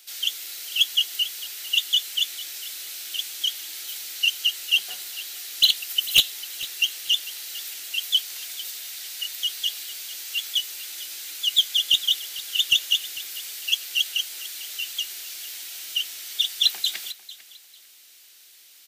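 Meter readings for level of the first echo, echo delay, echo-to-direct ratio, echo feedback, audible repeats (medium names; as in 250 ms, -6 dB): -17.0 dB, 448 ms, -17.0 dB, 24%, 2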